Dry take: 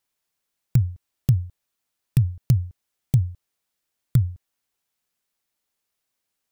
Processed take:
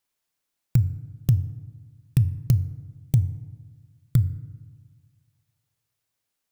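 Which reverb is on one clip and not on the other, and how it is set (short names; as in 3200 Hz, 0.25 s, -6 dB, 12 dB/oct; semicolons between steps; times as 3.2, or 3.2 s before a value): FDN reverb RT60 1.4 s, low-frequency decay 1.25×, high-frequency decay 0.45×, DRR 13.5 dB; gain -1 dB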